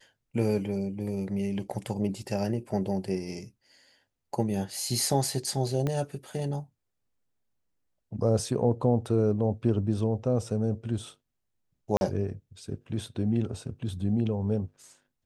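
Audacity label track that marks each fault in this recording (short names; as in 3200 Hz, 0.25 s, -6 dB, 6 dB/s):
5.870000	5.870000	pop -17 dBFS
11.970000	12.010000	gap 41 ms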